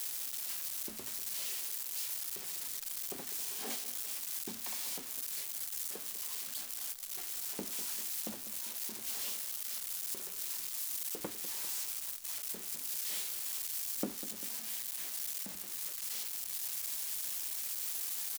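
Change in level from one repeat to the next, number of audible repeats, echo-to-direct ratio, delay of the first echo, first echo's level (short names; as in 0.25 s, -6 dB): -5.0 dB, 2, -12.5 dB, 0.198 s, -13.5 dB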